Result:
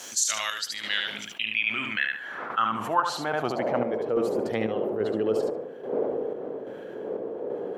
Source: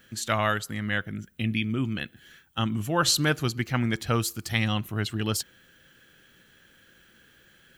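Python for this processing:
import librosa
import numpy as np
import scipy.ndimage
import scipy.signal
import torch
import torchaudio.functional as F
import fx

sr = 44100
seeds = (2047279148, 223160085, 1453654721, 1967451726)

p1 = fx.dmg_wind(x, sr, seeds[0], corner_hz=510.0, level_db=-39.0)
p2 = scipy.signal.sosfilt(scipy.signal.butter(2, 130.0, 'highpass', fs=sr, output='sos'), p1)
p3 = fx.high_shelf(p2, sr, hz=12000.0, db=11.0)
p4 = p3 + fx.echo_feedback(p3, sr, ms=73, feedback_pct=18, wet_db=-7.0, dry=0)
p5 = fx.filter_sweep_bandpass(p4, sr, from_hz=6400.0, to_hz=460.0, start_s=0.24, end_s=4.1, q=3.7)
p6 = fx.chopper(p5, sr, hz=1.2, depth_pct=60, duty_pct=60)
p7 = fx.env_flatten(p6, sr, amount_pct=50)
y = p7 * 10.0 ** (7.5 / 20.0)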